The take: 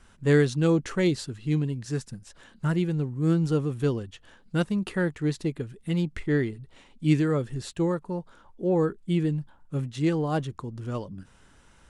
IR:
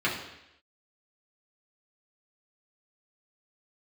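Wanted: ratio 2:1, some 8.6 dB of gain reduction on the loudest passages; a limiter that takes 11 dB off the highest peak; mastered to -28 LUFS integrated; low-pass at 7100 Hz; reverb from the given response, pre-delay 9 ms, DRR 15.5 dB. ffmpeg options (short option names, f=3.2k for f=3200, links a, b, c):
-filter_complex "[0:a]lowpass=7.1k,acompressor=threshold=-31dB:ratio=2,alimiter=level_in=6dB:limit=-24dB:level=0:latency=1,volume=-6dB,asplit=2[a][b];[1:a]atrim=start_sample=2205,adelay=9[c];[b][c]afir=irnorm=-1:irlink=0,volume=-27.5dB[d];[a][d]amix=inputs=2:normalize=0,volume=10.5dB"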